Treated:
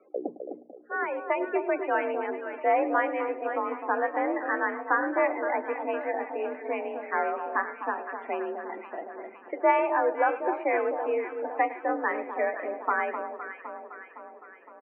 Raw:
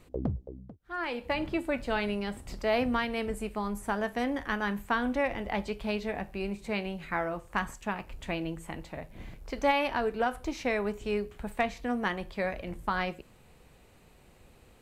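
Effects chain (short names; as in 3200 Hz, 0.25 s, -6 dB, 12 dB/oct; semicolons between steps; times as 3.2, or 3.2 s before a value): loudest bins only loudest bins 32; echo 0.105 s -17 dB; mistuned SSB +51 Hz 290–2100 Hz; echo with dull and thin repeats by turns 0.256 s, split 1200 Hz, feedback 73%, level -7 dB; gain +4.5 dB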